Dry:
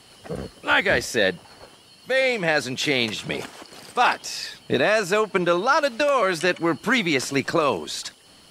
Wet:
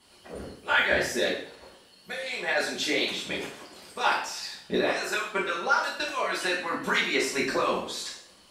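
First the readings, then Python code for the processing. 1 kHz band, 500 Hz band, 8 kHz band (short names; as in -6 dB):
-5.0 dB, -7.5 dB, -3.5 dB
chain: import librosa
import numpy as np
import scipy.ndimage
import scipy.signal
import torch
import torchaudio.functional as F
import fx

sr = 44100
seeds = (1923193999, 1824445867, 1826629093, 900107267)

y = fx.hpss(x, sr, part='harmonic', gain_db=-17)
y = fx.rev_double_slope(y, sr, seeds[0], early_s=0.54, late_s=2.1, knee_db=-27, drr_db=-5.5)
y = y * 10.0 ** (-8.0 / 20.0)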